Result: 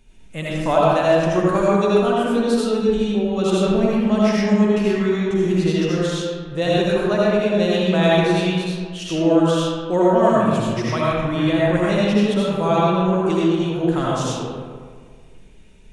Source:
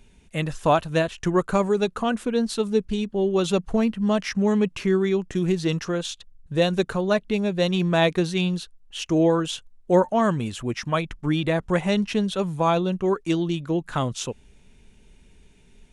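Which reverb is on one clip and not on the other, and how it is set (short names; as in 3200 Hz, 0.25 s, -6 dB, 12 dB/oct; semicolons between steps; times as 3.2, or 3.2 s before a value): digital reverb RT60 1.8 s, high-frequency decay 0.5×, pre-delay 40 ms, DRR -7 dB; gain -3 dB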